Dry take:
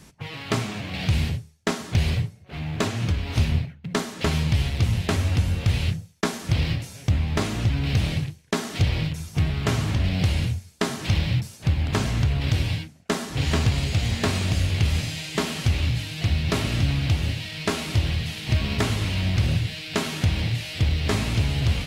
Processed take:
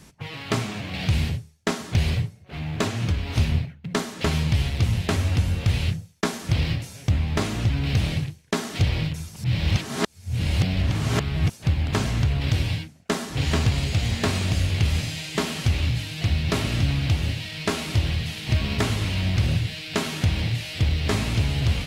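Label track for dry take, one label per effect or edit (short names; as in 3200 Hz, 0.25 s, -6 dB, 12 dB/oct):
9.360000	11.500000	reverse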